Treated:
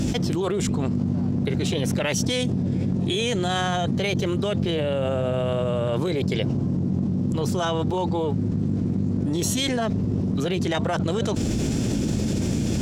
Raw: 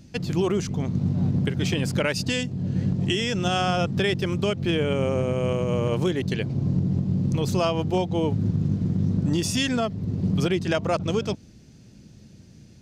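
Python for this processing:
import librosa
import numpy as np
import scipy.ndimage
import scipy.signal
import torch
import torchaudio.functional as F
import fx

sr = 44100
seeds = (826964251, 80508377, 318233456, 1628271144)

y = fx.high_shelf(x, sr, hz=6200.0, db=-4.0)
y = fx.formant_shift(y, sr, semitones=3)
y = fx.env_flatten(y, sr, amount_pct=100)
y = y * librosa.db_to_amplitude(-3.5)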